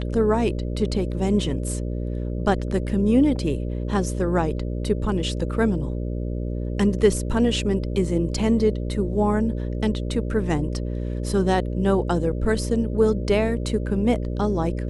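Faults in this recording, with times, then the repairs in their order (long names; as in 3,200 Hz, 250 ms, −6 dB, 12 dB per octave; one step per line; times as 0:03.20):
mains buzz 60 Hz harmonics 10 −27 dBFS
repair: hum removal 60 Hz, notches 10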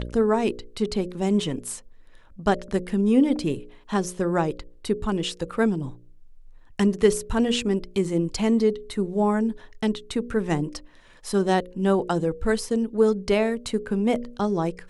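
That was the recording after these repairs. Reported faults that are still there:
none of them is left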